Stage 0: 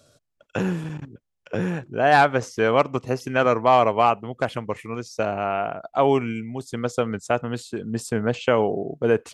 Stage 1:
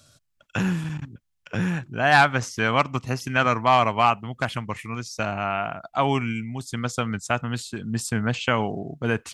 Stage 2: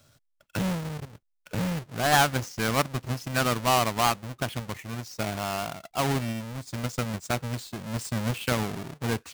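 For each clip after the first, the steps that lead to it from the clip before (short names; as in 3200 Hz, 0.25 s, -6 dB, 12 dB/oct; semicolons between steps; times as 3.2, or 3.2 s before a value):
bell 460 Hz -14 dB 1.4 oct; gain +4.5 dB
half-waves squared off; gain -8.5 dB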